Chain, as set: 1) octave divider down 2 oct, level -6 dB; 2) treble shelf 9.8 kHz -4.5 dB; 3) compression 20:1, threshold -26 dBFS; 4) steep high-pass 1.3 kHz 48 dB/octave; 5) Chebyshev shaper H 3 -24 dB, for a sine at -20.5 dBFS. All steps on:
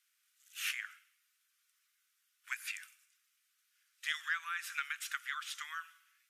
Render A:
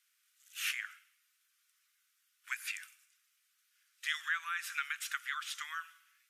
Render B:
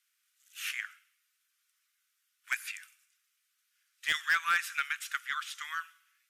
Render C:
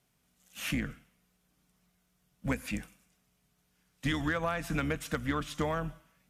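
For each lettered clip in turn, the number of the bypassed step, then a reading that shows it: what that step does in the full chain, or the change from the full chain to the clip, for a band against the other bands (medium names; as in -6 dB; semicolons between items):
5, crest factor change -2.0 dB; 3, mean gain reduction 3.5 dB; 4, 1 kHz band +7.0 dB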